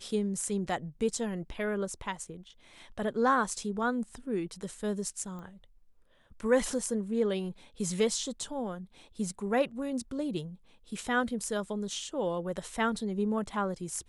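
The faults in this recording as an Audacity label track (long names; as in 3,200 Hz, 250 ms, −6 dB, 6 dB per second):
5.390000	5.390000	click −33 dBFS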